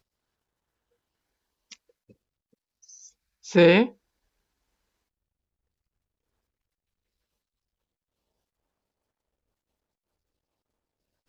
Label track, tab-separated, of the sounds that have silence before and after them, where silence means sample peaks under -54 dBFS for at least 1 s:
1.710000	3.940000	sound